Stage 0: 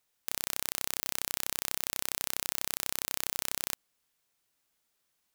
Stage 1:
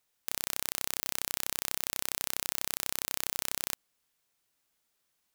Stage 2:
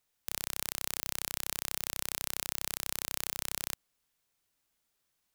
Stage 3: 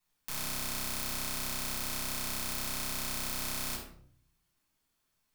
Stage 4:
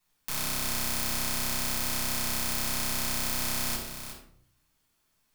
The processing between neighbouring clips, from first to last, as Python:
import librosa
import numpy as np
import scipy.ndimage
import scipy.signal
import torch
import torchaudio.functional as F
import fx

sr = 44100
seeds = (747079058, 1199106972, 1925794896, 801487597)

y1 = x
y2 = fx.low_shelf(y1, sr, hz=120.0, db=6.5)
y2 = y2 * librosa.db_to_amplitude(-2.0)
y3 = fx.room_shoebox(y2, sr, seeds[0], volume_m3=830.0, walls='furnished', distance_m=9.3)
y3 = y3 * librosa.db_to_amplitude(-8.5)
y4 = y3 + 10.0 ** (-9.5 / 20.0) * np.pad(y3, (int(364 * sr / 1000.0), 0))[:len(y3)]
y4 = y4 * librosa.db_to_amplitude(5.0)